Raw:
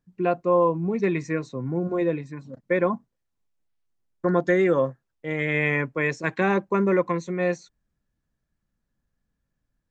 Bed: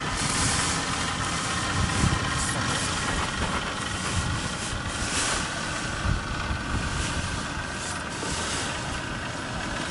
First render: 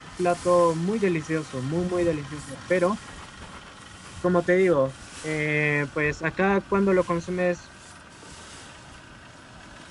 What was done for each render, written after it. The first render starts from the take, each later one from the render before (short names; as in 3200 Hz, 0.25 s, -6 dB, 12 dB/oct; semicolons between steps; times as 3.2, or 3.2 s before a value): add bed -14.5 dB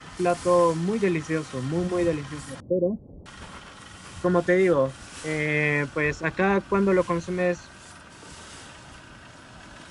2.6–3.26 steep low-pass 580 Hz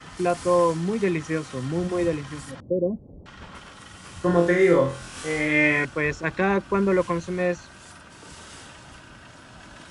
2.51–3.55 air absorption 100 m; 4.21–5.85 flutter echo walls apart 4 m, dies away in 0.44 s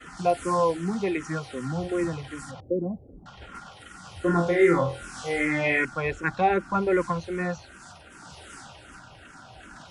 small resonant body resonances 770/1400 Hz, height 10 dB; endless phaser -2.6 Hz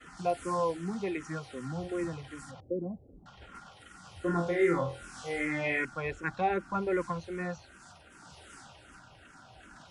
gain -7 dB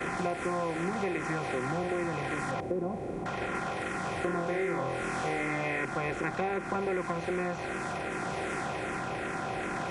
per-bin compression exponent 0.4; compressor, threshold -28 dBFS, peak gain reduction 9 dB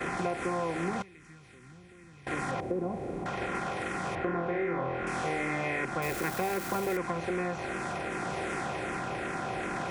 1.02–2.27 passive tone stack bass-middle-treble 6-0-2; 4.15–5.07 LPF 2500 Hz; 6.02–6.97 switching spikes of -30 dBFS